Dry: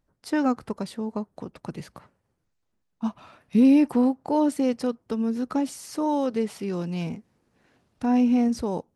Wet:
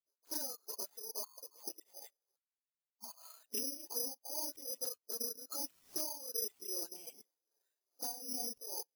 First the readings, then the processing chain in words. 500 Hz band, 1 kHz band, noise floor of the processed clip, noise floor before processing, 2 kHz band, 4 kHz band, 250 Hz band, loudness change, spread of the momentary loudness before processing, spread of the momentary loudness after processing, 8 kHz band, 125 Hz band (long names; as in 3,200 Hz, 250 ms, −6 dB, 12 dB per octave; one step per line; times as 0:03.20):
−20.5 dB, −22.5 dB, below −85 dBFS, −76 dBFS, −24.0 dB, −0.5 dB, −33.0 dB, −15.0 dB, 15 LU, 13 LU, +5.0 dB, below −35 dB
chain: random phases in long frames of 50 ms
high-pass filter 380 Hz 24 dB per octave
healed spectral selection 0:01.24–0:02.19, 880–1,800 Hz both
low-pass filter 8,700 Hz 12 dB per octave
high-shelf EQ 5,200 Hz −7.5 dB
output level in coarse steps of 21 dB
brickwall limiter −38 dBFS, peak gain reduction 6.5 dB
downward compressor 10 to 1, threshold −54 dBFS, peak gain reduction 12 dB
amplitude tremolo 2.5 Hz, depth 62%
all-pass dispersion highs, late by 50 ms, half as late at 1,600 Hz
bad sample-rate conversion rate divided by 8×, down none, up zero stuff
every bin expanded away from the loudest bin 1.5 to 1
level +7.5 dB